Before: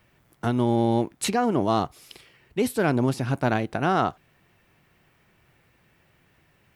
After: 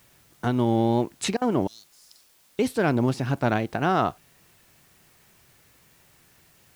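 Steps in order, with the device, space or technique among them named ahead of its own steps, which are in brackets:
0:01.67–0:02.59: inverse Chebyshev high-pass filter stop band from 2,400 Hz, stop band 40 dB
worn cassette (low-pass filter 8,500 Hz; tape wow and flutter; tape dropouts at 0:01.37, 44 ms −27 dB; white noise bed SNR 33 dB)

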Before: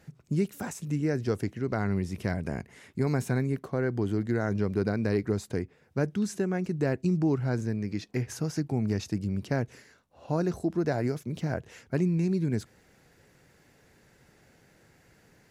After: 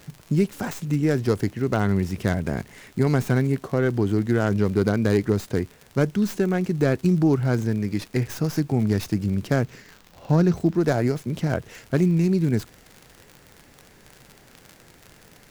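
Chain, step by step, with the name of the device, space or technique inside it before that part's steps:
record under a worn stylus (stylus tracing distortion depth 0.16 ms; surface crackle 69 per second −38 dBFS; pink noise bed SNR 33 dB)
0:09.64–0:10.76: graphic EQ with 15 bands 160 Hz +6 dB, 630 Hz −3 dB, 10,000 Hz −8 dB
level +6.5 dB

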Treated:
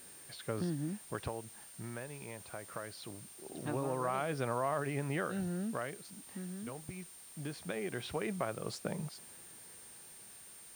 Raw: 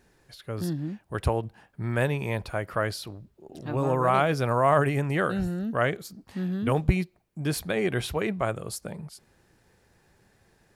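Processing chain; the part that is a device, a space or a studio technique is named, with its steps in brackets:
medium wave at night (band-pass filter 140–4,200 Hz; downward compressor, threshold −32 dBFS, peak gain reduction 15.5 dB; amplitude tremolo 0.22 Hz, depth 71%; steady tone 9,000 Hz −54 dBFS; white noise bed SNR 18 dB)
level +1 dB

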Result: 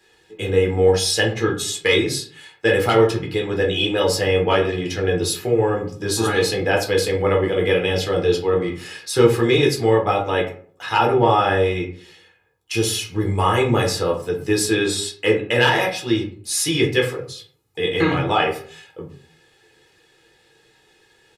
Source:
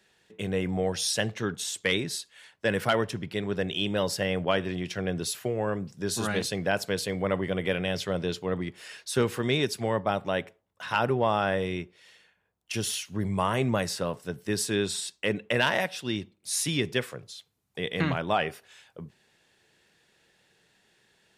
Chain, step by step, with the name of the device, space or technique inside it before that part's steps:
microphone above a desk (comb filter 2.4 ms, depth 66%; convolution reverb RT60 0.50 s, pre-delay 6 ms, DRR −1.5 dB)
level +3.5 dB

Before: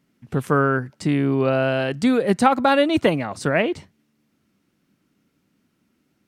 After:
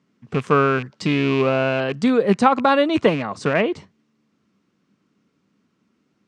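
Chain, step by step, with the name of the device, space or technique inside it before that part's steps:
car door speaker with a rattle (loose part that buzzes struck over −26 dBFS, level −20 dBFS; loudspeaker in its box 84–7,400 Hz, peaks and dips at 200 Hz +4 dB, 440 Hz +5 dB, 1,100 Hz +7 dB)
0:00.92–0:01.42: parametric band 3,800 Hz +7 dB 1.4 octaves
level −1 dB

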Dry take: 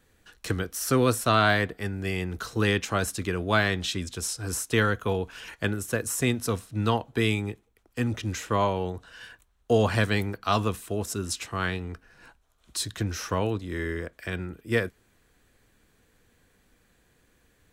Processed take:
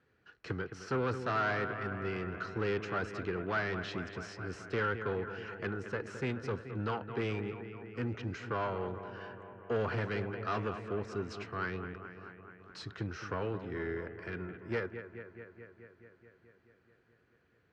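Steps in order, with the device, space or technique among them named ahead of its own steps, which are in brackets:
analogue delay pedal into a guitar amplifier (bucket-brigade delay 215 ms, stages 4,096, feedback 72%, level −13 dB; tube saturation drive 23 dB, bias 0.4; loudspeaker in its box 87–4,500 Hz, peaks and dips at 130 Hz +6 dB, 400 Hz +6 dB, 1,400 Hz +7 dB, 3,600 Hz −8 dB)
level −7 dB

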